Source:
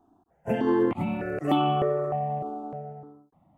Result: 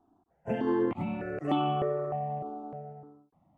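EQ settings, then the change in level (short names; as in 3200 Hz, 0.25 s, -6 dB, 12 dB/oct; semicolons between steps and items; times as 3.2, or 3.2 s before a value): air absorption 64 m; -4.5 dB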